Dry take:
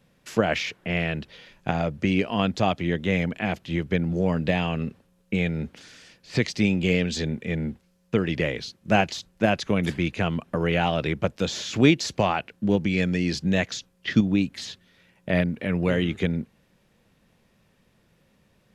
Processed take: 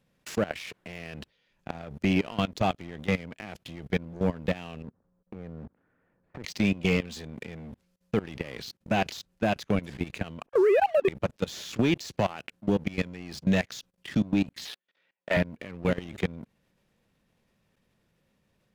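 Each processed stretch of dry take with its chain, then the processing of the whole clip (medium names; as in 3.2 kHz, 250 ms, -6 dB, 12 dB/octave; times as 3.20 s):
4.82–6.44 s: low-pass 1.4 kHz 24 dB/octave + compression 8:1, threshold -31 dBFS
10.46–11.08 s: formants replaced by sine waves + tilt EQ -4 dB/octave
14.65–15.37 s: waveshaping leveller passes 2 + band-pass 450–3900 Hz
whole clip: level held to a coarse grid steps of 22 dB; waveshaping leveller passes 2; peak limiter -15 dBFS; trim -1.5 dB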